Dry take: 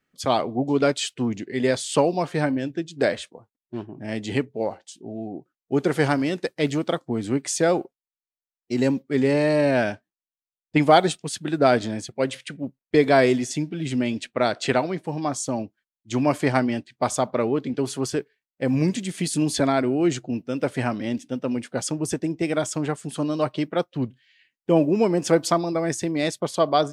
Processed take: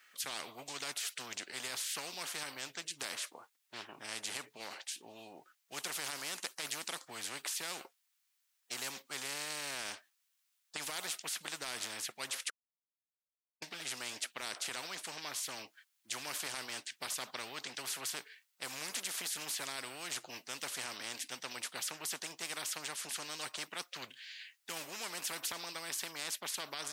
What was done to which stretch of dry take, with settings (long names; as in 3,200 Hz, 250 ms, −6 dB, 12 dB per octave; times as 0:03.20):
0:12.50–0:13.62: silence
whole clip: high-pass filter 1,400 Hz 12 dB per octave; brickwall limiter −21 dBFS; every bin compressed towards the loudest bin 4 to 1; level +2 dB